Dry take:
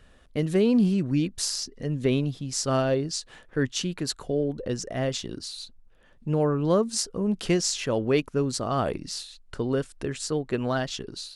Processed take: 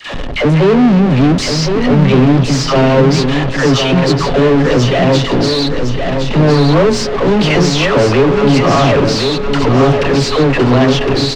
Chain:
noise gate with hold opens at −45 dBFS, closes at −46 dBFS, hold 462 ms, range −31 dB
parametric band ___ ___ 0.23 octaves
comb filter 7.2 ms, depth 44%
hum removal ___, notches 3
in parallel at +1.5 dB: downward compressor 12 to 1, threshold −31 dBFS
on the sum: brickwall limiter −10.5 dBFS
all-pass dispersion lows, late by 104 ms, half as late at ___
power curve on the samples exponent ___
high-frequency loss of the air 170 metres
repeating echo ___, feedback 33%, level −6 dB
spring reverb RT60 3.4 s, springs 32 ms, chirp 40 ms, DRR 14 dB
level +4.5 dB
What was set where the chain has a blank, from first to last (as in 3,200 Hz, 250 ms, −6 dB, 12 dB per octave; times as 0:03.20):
1,500 Hz, −12 dB, 421.3 Hz, 610 Hz, 0.35, 1,061 ms